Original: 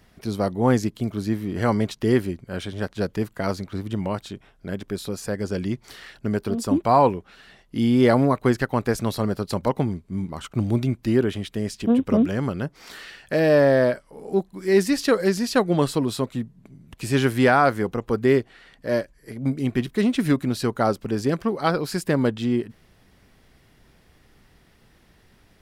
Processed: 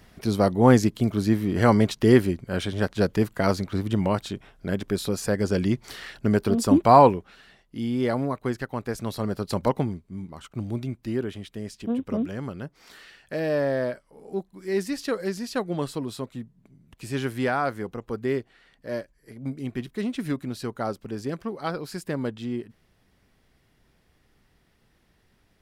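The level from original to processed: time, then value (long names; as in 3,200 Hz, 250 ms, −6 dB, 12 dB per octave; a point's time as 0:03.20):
0:06.99 +3 dB
0:07.76 −8 dB
0:08.85 −8 dB
0:09.66 0 dB
0:10.17 −8 dB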